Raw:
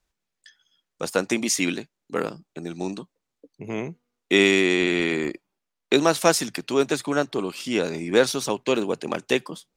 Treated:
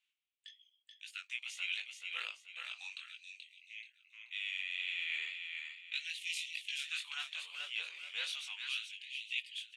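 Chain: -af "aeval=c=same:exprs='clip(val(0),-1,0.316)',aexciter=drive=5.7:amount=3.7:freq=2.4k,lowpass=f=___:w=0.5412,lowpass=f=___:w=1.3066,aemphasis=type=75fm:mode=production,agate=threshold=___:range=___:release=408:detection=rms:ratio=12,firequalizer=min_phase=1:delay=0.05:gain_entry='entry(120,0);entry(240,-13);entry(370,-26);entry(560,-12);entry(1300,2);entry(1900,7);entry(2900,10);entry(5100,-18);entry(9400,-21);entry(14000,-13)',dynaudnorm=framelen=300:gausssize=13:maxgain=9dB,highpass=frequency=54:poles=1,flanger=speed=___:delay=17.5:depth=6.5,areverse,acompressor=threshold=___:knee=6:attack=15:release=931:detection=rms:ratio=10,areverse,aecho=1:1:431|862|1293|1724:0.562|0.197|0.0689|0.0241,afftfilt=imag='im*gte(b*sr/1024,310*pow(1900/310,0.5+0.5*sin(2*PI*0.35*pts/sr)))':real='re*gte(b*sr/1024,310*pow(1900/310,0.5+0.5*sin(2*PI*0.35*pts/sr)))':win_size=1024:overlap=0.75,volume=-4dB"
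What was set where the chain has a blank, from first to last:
9k, 9k, -35dB, -9dB, 1.8, -30dB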